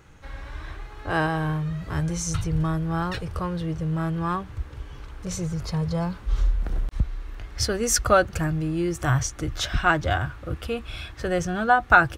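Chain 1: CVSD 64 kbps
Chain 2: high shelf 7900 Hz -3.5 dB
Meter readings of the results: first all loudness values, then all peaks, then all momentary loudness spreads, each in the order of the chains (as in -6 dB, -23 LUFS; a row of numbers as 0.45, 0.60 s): -26.0, -25.5 LUFS; -4.0, -2.5 dBFS; 16, 17 LU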